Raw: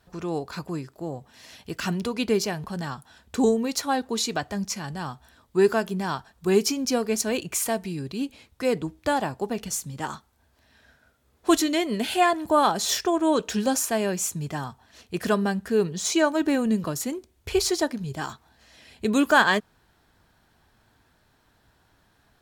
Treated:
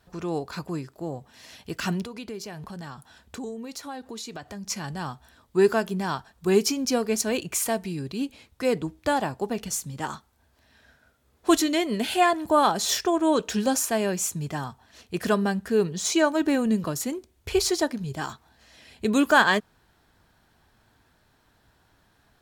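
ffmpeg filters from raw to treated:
-filter_complex "[0:a]asettb=1/sr,asplit=3[a][b][c];[a]atrim=end=2.024[d];[b]atrim=start=2.02:end=4.67,asetpts=PTS-STARTPTS,afade=t=in:d=0.004:c=qsin,afade=t=out:st=2.646:d=0.004:c=qsin,acompressor=threshold=-37dB:ratio=3:attack=3.2:release=140:knee=1:detection=peak[e];[c]atrim=start=4.666[f];[d][e]acrossfade=d=0.004:c1=hsin:c2=qsin[g];[g][f]acrossfade=d=0.004:c1=qsin:c2=hsin"

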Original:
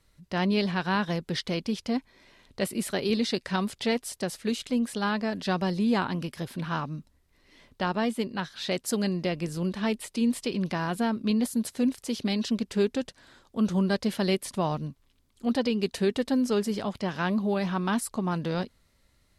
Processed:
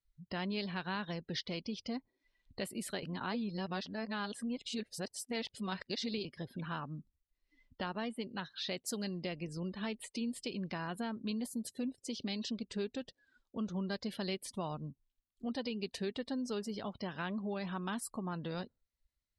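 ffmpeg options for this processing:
-filter_complex "[0:a]asplit=3[a][b][c];[a]atrim=end=3.032[d];[b]atrim=start=3.028:end=6.252,asetpts=PTS-STARTPTS,areverse[e];[c]atrim=start=6.248[f];[d][e]acrossfade=d=0.004:c1=hsin:c2=hsin[g];[g][f]acrossfade=d=0.004:c1=hsin:c2=hsin,afftdn=nr=29:nf=-44,equalizer=f=4.4k:w=0.49:g=5.5,acompressor=threshold=-44dB:ratio=2,volume=-1dB"

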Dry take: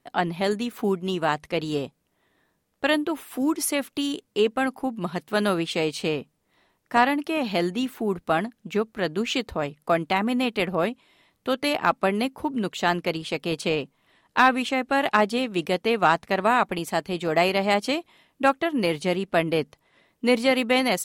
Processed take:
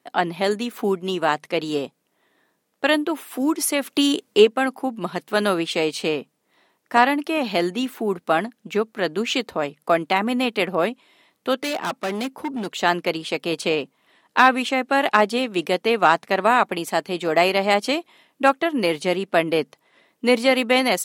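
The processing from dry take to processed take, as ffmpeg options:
-filter_complex "[0:a]asplit=3[a][b][c];[a]afade=t=out:st=3.85:d=0.02[d];[b]acontrast=47,afade=t=in:st=3.85:d=0.02,afade=t=out:st=4.44:d=0.02[e];[c]afade=t=in:st=4.44:d=0.02[f];[d][e][f]amix=inputs=3:normalize=0,asplit=3[g][h][i];[g]afade=t=out:st=11.56:d=0.02[j];[h]asoftclip=type=hard:threshold=-25dB,afade=t=in:st=11.56:d=0.02,afade=t=out:st=12.76:d=0.02[k];[i]afade=t=in:st=12.76:d=0.02[l];[j][k][l]amix=inputs=3:normalize=0,highpass=220,volume=3.5dB"

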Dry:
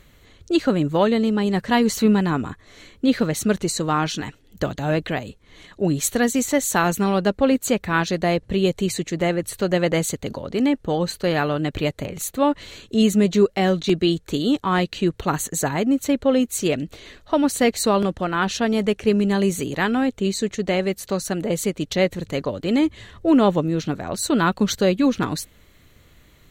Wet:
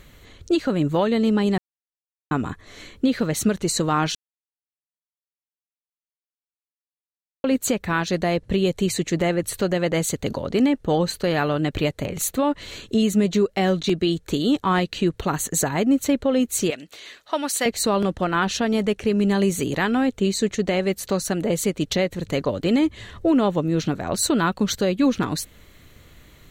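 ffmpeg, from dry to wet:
-filter_complex "[0:a]asettb=1/sr,asplit=3[a][b][c];[a]atrim=end=16.704[d];[b]atrim=start=16.7:end=17.66,asetpts=PTS-STARTPTS,afade=t=in:d=0.004:c=qsin,afade=t=out:st=0.956:d=0.004:c=qsin,highpass=f=1.3k:p=1[e];[c]atrim=start=17.656[f];[d][e]acrossfade=d=0.004:c1=hsin:c2=qsin[g];[g][f]acrossfade=d=0.004:c1=qsin:c2=hsin,asplit=5[h][i][j][k][l];[h]atrim=end=1.58,asetpts=PTS-STARTPTS,afade=t=out:st=1.576:d=0.004:c=hsin[m];[i]atrim=start=1.58:end=2.31,asetpts=PTS-STARTPTS,volume=0[n];[j]atrim=start=2.31:end=4.15,asetpts=PTS-STARTPTS,afade=t=in:d=0.004:c=hsin,afade=t=out:st=1.836:d=0.004:c=hsin[o];[k]atrim=start=4.15:end=7.44,asetpts=PTS-STARTPTS,volume=0[p];[l]atrim=start=7.44,asetpts=PTS-STARTPTS,afade=t=in:d=0.004:c=hsin[q];[m][n][o][p][q]concat=n=5:v=0:a=1,alimiter=limit=-14dB:level=0:latency=1:release=325,volume=3.5dB"

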